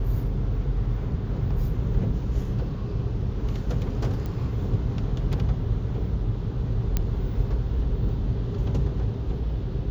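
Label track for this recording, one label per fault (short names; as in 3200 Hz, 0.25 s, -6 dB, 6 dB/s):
4.260000	4.260000	pop -21 dBFS
6.970000	6.970000	pop -10 dBFS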